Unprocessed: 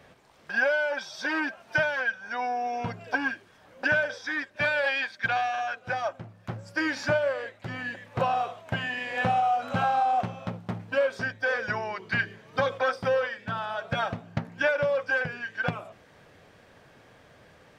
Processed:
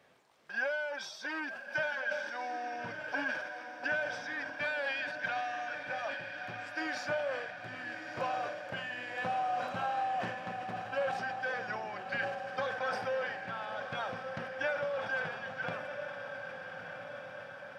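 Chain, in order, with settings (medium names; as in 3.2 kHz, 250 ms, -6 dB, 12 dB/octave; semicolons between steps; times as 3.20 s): high-pass 270 Hz 6 dB/octave; echo that smears into a reverb 1295 ms, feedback 63%, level -7 dB; decay stretcher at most 47 dB/s; trim -9 dB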